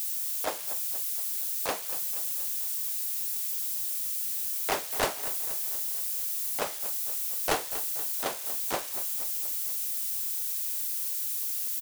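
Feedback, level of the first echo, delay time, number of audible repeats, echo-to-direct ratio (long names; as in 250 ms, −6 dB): 59%, −14.0 dB, 238 ms, 5, −12.0 dB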